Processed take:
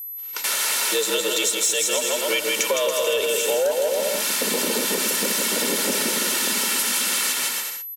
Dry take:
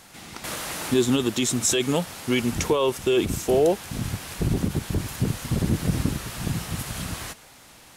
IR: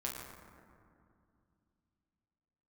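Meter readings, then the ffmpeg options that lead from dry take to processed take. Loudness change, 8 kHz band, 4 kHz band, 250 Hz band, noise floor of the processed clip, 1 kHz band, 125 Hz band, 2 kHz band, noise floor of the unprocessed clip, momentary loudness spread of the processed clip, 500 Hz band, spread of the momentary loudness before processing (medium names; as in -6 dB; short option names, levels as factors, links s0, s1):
+4.5 dB, +9.5 dB, +9.0 dB, -7.0 dB, -34 dBFS, +3.5 dB, under -15 dB, +9.0 dB, -50 dBFS, 2 LU, +2.0 dB, 10 LU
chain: -af "highpass=f=160:w=0.5412,highpass=f=160:w=1.3066,agate=range=0.0158:threshold=0.0112:ratio=16:detection=peak,tiltshelf=f=1100:g=-7,aecho=1:1:2.3:0.6,adynamicequalizer=threshold=0.00891:dfrequency=520:dqfactor=3.7:tfrequency=520:tqfactor=3.7:attack=5:release=100:ratio=0.375:range=3.5:mode=boostabove:tftype=bell,aecho=1:1:160|280|370|437.5|488.1:0.631|0.398|0.251|0.158|0.1,dynaudnorm=f=130:g=11:m=2,asoftclip=type=tanh:threshold=0.376,afreqshift=78,aeval=exprs='val(0)+0.0178*sin(2*PI*12000*n/s)':c=same,acompressor=threshold=0.0708:ratio=6,volume=1.58"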